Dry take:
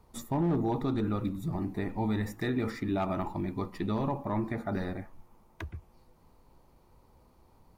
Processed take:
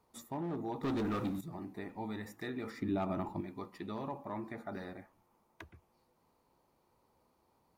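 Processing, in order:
high-pass filter 280 Hz 6 dB per octave
0:00.83–0:01.41: leveller curve on the samples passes 3
0:02.77–0:03.41: low-shelf EQ 390 Hz +11 dB
level −7 dB

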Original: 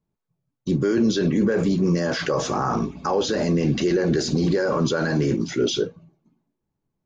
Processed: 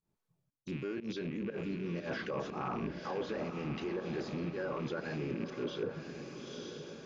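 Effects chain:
loose part that buzzes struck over −27 dBFS, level −23 dBFS
reversed playback
downward compressor 12 to 1, threshold −33 dBFS, peak gain reduction 17.5 dB
reversed playback
low-shelf EQ 270 Hz −3.5 dB
fake sidechain pumping 120 BPM, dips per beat 1, −18 dB, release 132 ms
on a send: feedback delay with all-pass diffusion 932 ms, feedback 57%, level −8.5 dB
on the sum: treble cut that deepens with the level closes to 1,700 Hz, closed at −31 dBFS

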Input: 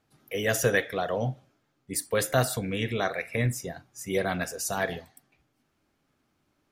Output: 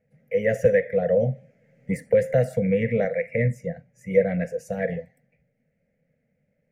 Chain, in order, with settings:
drawn EQ curve 100 Hz 0 dB, 170 Hz +11 dB, 240 Hz +3 dB, 340 Hz −20 dB, 500 Hz +15 dB, 1,100 Hz −26 dB, 2,000 Hz +6 dB, 3,600 Hz −23 dB, 6,500 Hz −15 dB, 14,000 Hz −21 dB
0:00.65–0:03.05: multiband upward and downward compressor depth 70%
level −1 dB

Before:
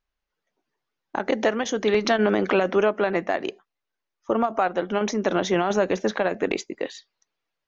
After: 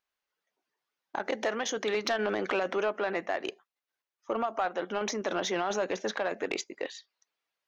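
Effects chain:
high-pass filter 580 Hz 6 dB per octave
in parallel at +1.5 dB: output level in coarse steps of 18 dB
on the sum: soft clipping −13 dBFS, distortion −19 dB
level −6 dB

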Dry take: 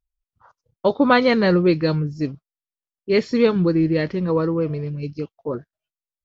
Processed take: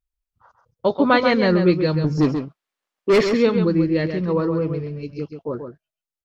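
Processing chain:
0:02.04–0:03.29: mid-hump overdrive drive 27 dB, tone 1,600 Hz, clips at −6 dBFS
slap from a distant wall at 23 metres, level −7 dB
level −1 dB

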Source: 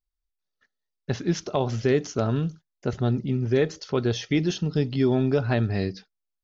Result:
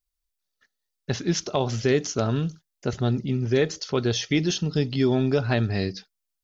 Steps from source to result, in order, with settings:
high-shelf EQ 3,200 Hz +9 dB

